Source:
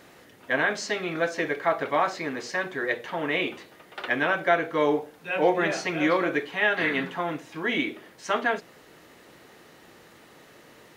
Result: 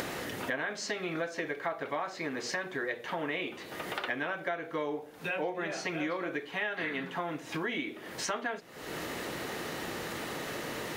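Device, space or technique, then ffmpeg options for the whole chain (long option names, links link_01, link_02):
upward and downward compression: -af "acompressor=mode=upward:threshold=-32dB:ratio=2.5,acompressor=threshold=-38dB:ratio=6,volume=5.5dB"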